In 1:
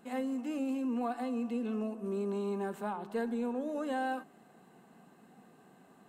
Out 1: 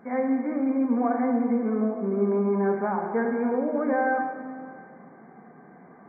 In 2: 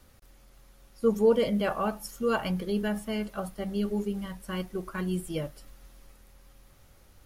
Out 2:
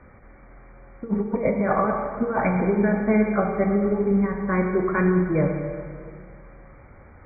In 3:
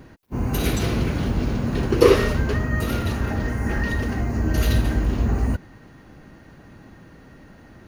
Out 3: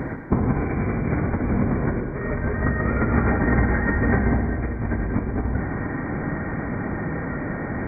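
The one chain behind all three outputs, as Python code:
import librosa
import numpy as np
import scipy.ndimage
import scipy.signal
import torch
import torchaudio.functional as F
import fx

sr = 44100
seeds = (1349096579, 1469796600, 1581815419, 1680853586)

y = fx.highpass(x, sr, hz=63.0, slope=6)
y = fx.over_compress(y, sr, threshold_db=-30.0, ratio=-0.5)
y = fx.brickwall_lowpass(y, sr, high_hz=2400.0)
y = fx.rev_plate(y, sr, seeds[0], rt60_s=2.1, hf_ratio=0.9, predelay_ms=0, drr_db=2.5)
y = F.gain(torch.from_numpy(y), 8.5).numpy()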